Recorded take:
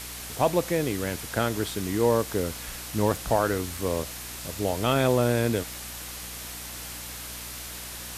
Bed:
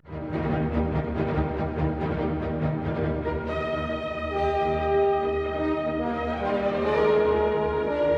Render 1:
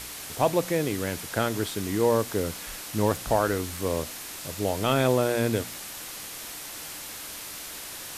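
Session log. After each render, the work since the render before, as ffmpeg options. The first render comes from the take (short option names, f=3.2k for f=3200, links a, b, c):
-af "bandreject=f=60:t=h:w=4,bandreject=f=120:t=h:w=4,bandreject=f=180:t=h:w=4,bandreject=f=240:t=h:w=4"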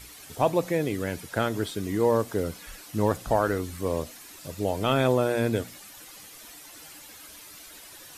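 -af "afftdn=nr=11:nf=-39"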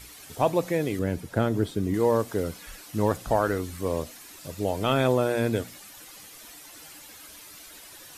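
-filter_complex "[0:a]asettb=1/sr,asplit=3[a][b][c];[a]atrim=end=0.994[d];[b]atrim=start=0.99:end=1.94,asetpts=PTS-STARTPTS,afade=t=in:d=0.004:c=qsin,afade=t=out:st=0.946:d=0.004:c=qsin,tiltshelf=f=680:g=6[e];[c]atrim=start=1.936[f];[d][e]acrossfade=d=0.004:c1=hsin:c2=qsin[g];[g][f]acrossfade=d=0.004:c1=qsin:c2=hsin"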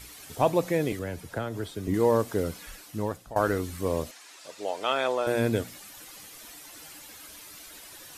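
-filter_complex "[0:a]asettb=1/sr,asplit=3[a][b][c];[a]atrim=end=0.924[d];[b]atrim=start=0.92:end=1.88,asetpts=PTS-STARTPTS,afade=t=in:d=0.004:c=qsin,afade=t=out:st=0.956:d=0.004:c=qsin,acrossover=split=98|490|1300[e][f][g][h];[e]acompressor=threshold=-41dB:ratio=3[i];[f]acompressor=threshold=-41dB:ratio=3[j];[g]acompressor=threshold=-34dB:ratio=3[k];[h]acompressor=threshold=-41dB:ratio=3[l];[i][j][k][l]amix=inputs=4:normalize=0[m];[c]atrim=start=1.876[n];[d][m]acrossfade=d=0.004:c1=hsin:c2=qsin[o];[o][n]acrossfade=d=0.004:c1=qsin:c2=hsin,asettb=1/sr,asplit=3[p][q][r];[p]atrim=end=4.114[s];[q]atrim=start=4.11:end=5.27,asetpts=PTS-STARTPTS,afade=t=in:d=0.004:c=qsin,afade=t=out:st=1.156:d=0.004:c=qsin,highpass=570,lowpass=7.3k[t];[r]atrim=start=5.266[u];[s][t]acrossfade=d=0.004:c1=hsin:c2=qsin[v];[v][u]acrossfade=d=0.004:c1=qsin:c2=hsin,asplit=2[w][x];[w]atrim=end=3.36,asetpts=PTS-STARTPTS,afade=t=out:st=2.62:d=0.74:silence=0.105925[y];[x]atrim=start=3.36,asetpts=PTS-STARTPTS,afade=t=in:d=0.004:c=hsin:silence=0.105925[z];[y][z]concat=n=2:v=0:a=1"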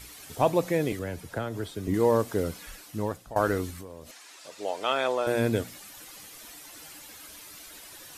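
-filter_complex "[0:a]asettb=1/sr,asplit=3[a][b][c];[a]atrim=end=3.704[d];[b]atrim=start=3.7:end=4.6,asetpts=PTS-STARTPTS,afade=t=in:d=0.004:c=qsin,afade=t=out:st=0.896:d=0.004:c=qsin,acompressor=threshold=-37dB:ratio=16:attack=3.2:release=140:knee=1:detection=peak[e];[c]atrim=start=4.596[f];[d][e]acrossfade=d=0.004:c1=hsin:c2=qsin[g];[g][f]acrossfade=d=0.004:c1=qsin:c2=hsin"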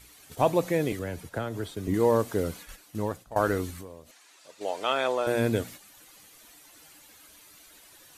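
-af "agate=range=-7dB:threshold=-42dB:ratio=16:detection=peak,bandreject=f=5.2k:w=20"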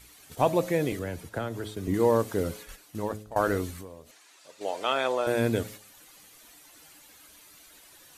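-af "bandreject=f=106.4:t=h:w=4,bandreject=f=212.8:t=h:w=4,bandreject=f=319.2:t=h:w=4,bandreject=f=425.6:t=h:w=4,bandreject=f=532:t=h:w=4,bandreject=f=638.4:t=h:w=4"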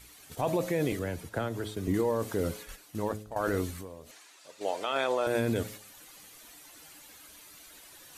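-af "areverse,acompressor=mode=upward:threshold=-47dB:ratio=2.5,areverse,alimiter=limit=-19dB:level=0:latency=1:release=15"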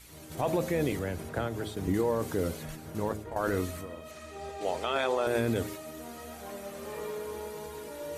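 -filter_complex "[1:a]volume=-16.5dB[a];[0:a][a]amix=inputs=2:normalize=0"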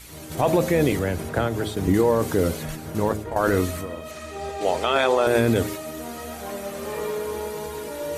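-af "volume=9dB"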